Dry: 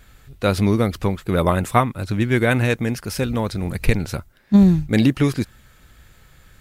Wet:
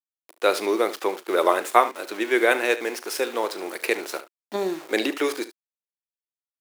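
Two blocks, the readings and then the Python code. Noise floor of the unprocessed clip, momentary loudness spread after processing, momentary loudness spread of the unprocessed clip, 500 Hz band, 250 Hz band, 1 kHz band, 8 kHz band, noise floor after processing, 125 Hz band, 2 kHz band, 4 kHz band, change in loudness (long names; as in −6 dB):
−52 dBFS, 10 LU, 9 LU, +0.5 dB, −12.0 dB, +1.0 dB, +0.5 dB, below −85 dBFS, below −30 dB, +0.5 dB, +0.5 dB, −4.5 dB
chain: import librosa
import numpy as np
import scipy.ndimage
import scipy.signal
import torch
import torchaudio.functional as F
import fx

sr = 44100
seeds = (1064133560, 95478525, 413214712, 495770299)

y = np.where(np.abs(x) >= 10.0 ** (-33.0 / 20.0), x, 0.0)
y = scipy.signal.sosfilt(scipy.signal.cheby1(4, 1.0, 350.0, 'highpass', fs=sr, output='sos'), y)
y = fx.room_early_taps(y, sr, ms=(37, 72), db=(-16.0, -15.0))
y = F.gain(torch.from_numpy(y), 1.0).numpy()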